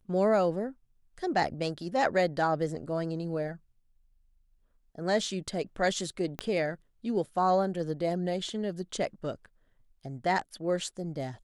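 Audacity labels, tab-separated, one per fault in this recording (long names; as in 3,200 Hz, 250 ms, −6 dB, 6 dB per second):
6.390000	6.390000	click −18 dBFS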